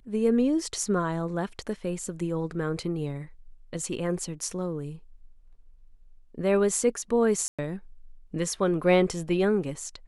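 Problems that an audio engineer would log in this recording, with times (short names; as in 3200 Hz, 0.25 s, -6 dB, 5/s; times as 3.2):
7.48–7.59 gap 0.106 s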